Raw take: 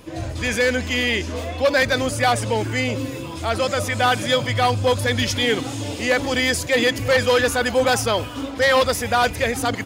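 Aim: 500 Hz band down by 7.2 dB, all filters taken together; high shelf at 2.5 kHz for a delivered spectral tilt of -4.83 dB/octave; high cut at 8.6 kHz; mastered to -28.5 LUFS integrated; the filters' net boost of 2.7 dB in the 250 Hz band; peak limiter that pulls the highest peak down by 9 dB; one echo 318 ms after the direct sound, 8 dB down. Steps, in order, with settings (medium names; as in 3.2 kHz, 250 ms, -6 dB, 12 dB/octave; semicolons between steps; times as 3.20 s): low-pass 8.6 kHz; peaking EQ 250 Hz +5 dB; peaking EQ 500 Hz -8.5 dB; treble shelf 2.5 kHz -4.5 dB; peak limiter -18.5 dBFS; delay 318 ms -8 dB; trim -2.5 dB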